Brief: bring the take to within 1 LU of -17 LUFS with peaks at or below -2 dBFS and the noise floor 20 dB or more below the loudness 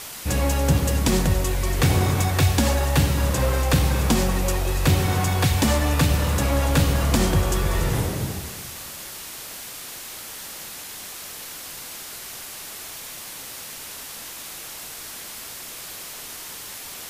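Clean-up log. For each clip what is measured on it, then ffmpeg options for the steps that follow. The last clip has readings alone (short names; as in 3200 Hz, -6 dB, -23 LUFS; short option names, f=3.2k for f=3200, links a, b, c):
noise floor -37 dBFS; noise floor target -44 dBFS; loudness -24.0 LUFS; peak -9.0 dBFS; loudness target -17.0 LUFS
-> -af "afftdn=nr=7:nf=-37"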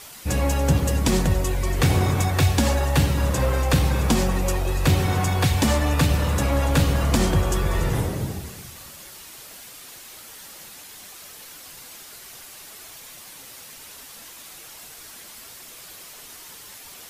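noise floor -43 dBFS; loudness -21.5 LUFS; peak -9.5 dBFS; loudness target -17.0 LUFS
-> -af "volume=4.5dB"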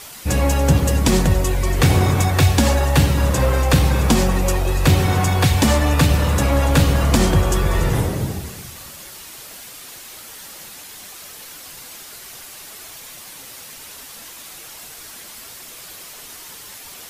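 loudness -17.0 LUFS; peak -5.0 dBFS; noise floor -38 dBFS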